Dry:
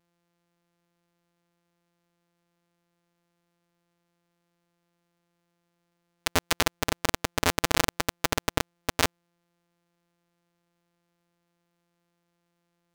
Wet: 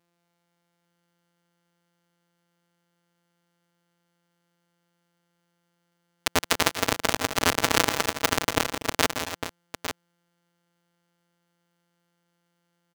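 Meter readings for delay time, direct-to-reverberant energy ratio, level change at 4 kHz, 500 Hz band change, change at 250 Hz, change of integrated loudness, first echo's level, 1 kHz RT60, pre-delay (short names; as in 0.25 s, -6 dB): 0.167 s, none, +3.5 dB, +3.0 dB, +2.0 dB, +3.0 dB, -10.0 dB, none, none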